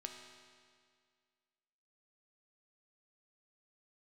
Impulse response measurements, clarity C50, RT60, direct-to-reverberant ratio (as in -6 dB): 4.0 dB, 2.0 s, 2.0 dB